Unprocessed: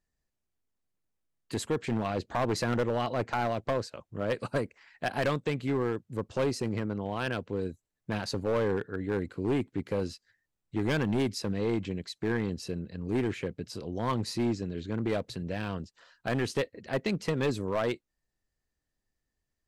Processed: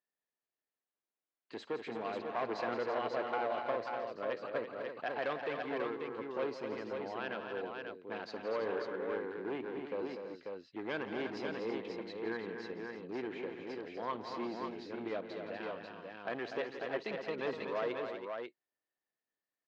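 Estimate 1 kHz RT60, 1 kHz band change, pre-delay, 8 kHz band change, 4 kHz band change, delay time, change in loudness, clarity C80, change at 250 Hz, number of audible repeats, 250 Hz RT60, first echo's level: no reverb, -4.0 dB, no reverb, under -20 dB, -9.0 dB, 55 ms, -7.5 dB, no reverb, -11.0 dB, 5, no reverb, -19.5 dB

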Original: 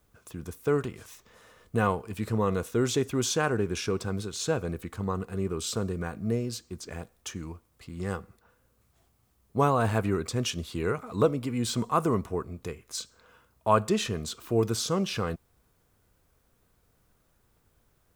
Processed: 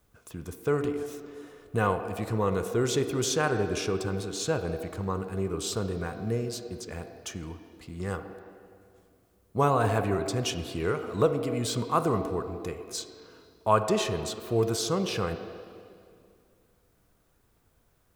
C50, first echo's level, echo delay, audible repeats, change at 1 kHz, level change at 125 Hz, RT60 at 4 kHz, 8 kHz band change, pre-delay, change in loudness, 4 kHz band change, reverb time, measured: 8.5 dB, no echo, no echo, no echo, +0.5 dB, -0.5 dB, 2.0 s, 0.0 dB, 34 ms, 0.0 dB, 0.0 dB, 2.2 s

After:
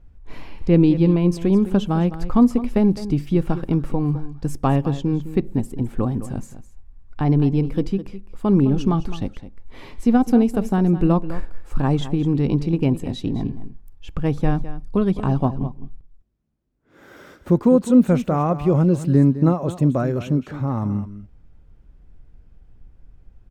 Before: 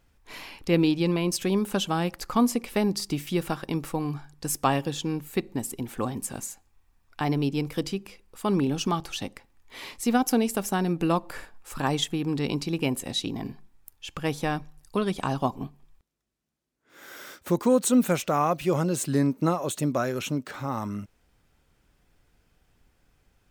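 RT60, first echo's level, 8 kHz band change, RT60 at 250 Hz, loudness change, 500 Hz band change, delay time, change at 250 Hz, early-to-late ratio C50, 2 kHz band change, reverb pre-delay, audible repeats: no reverb, -13.5 dB, under -10 dB, no reverb, +7.0 dB, +5.0 dB, 209 ms, +8.5 dB, no reverb, -3.5 dB, no reverb, 1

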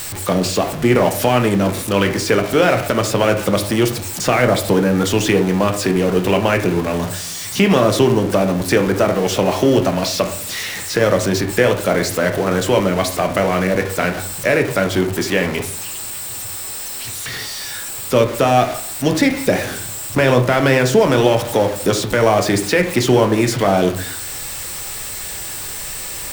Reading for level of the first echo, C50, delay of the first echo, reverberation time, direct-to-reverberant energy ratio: no echo, 11.0 dB, no echo, 0.55 s, 5.0 dB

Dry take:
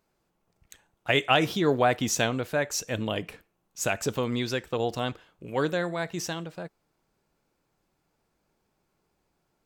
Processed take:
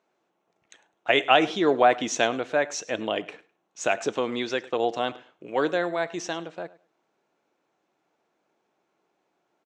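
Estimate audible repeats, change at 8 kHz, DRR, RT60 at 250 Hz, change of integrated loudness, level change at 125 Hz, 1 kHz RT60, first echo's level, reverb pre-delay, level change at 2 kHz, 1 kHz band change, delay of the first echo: 2, -3.0 dB, no reverb, no reverb, +2.5 dB, -10.5 dB, no reverb, -20.0 dB, no reverb, +2.5 dB, +5.0 dB, 103 ms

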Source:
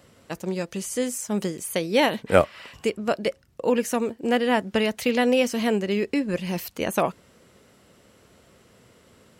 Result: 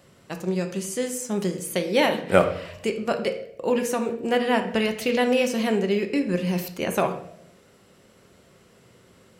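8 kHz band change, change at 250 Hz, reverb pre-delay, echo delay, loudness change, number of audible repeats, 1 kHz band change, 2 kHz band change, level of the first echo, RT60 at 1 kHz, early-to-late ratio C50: -0.5 dB, 0.0 dB, 3 ms, no echo, 0.0 dB, no echo, 0.0 dB, 0.0 dB, no echo, 0.60 s, 9.5 dB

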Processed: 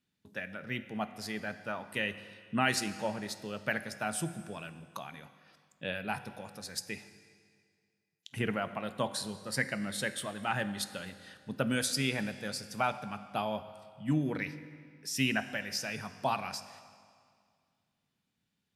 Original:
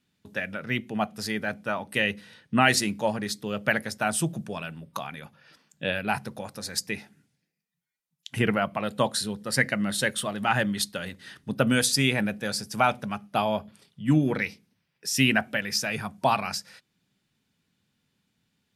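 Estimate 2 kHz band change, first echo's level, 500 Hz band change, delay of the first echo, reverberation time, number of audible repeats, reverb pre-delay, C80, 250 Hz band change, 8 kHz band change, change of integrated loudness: -8.0 dB, no echo, -8.0 dB, no echo, 2.1 s, no echo, 20 ms, 14.0 dB, -8.0 dB, -8.5 dB, -8.0 dB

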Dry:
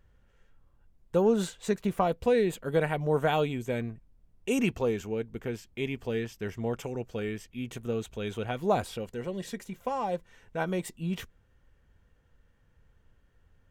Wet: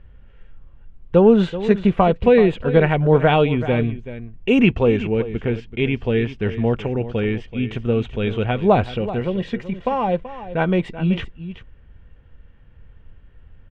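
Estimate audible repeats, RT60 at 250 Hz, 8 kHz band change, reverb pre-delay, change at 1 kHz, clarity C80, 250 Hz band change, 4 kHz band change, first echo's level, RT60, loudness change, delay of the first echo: 1, no reverb, under -10 dB, no reverb, +10.0 dB, no reverb, +13.0 dB, +9.5 dB, -13.5 dB, no reverb, +11.5 dB, 381 ms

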